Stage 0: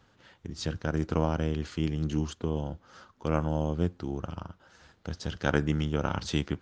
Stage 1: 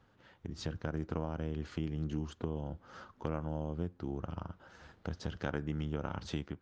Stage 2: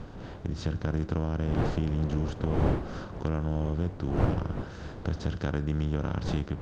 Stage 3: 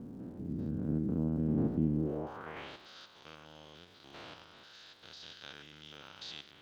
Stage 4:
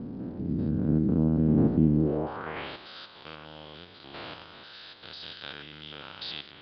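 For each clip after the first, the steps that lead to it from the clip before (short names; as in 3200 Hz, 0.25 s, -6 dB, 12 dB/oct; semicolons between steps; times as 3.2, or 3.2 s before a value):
compressor 3:1, threshold -38 dBFS, peak gain reduction 14.5 dB; high shelf 3400 Hz -10.5 dB; AGC gain up to 6 dB; gain -3.5 dB
per-bin compression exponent 0.6; wind noise 560 Hz -40 dBFS; low shelf 180 Hz +10.5 dB
stepped spectrum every 0.1 s; band-pass sweep 240 Hz -> 3800 Hz, 1.94–2.72; crackle 400/s -67 dBFS; gain +5.5 dB
downsampling 11025 Hz; gain +8.5 dB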